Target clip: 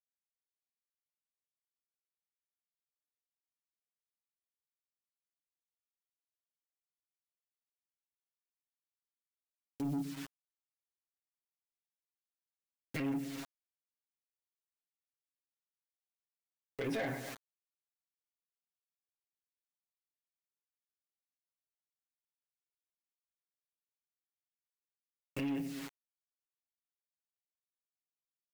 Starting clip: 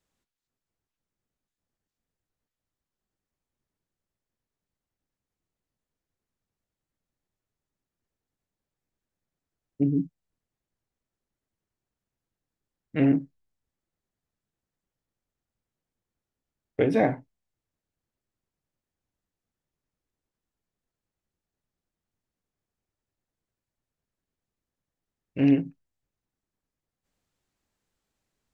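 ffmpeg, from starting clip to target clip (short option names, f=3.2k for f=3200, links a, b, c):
-af "equalizer=f=970:t=o:w=0.38:g=-2.5,aecho=1:1:119|238|357:0.1|0.041|0.0168,agate=range=-9dB:threshold=-47dB:ratio=16:detection=peak,acrusher=bits=8:mix=0:aa=0.000001,acompressor=threshold=-34dB:ratio=6,tiltshelf=f=690:g=-6.5,aecho=1:1:7.4:0.9,alimiter=level_in=5dB:limit=-24dB:level=0:latency=1:release=36,volume=-5dB,asoftclip=type=tanh:threshold=-36.5dB,volume=5.5dB"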